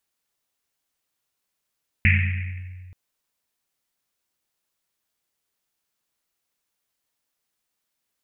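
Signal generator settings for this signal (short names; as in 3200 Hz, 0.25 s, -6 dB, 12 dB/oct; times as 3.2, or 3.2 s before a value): Risset drum length 0.88 s, pitch 91 Hz, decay 2.12 s, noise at 2200 Hz, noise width 820 Hz, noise 35%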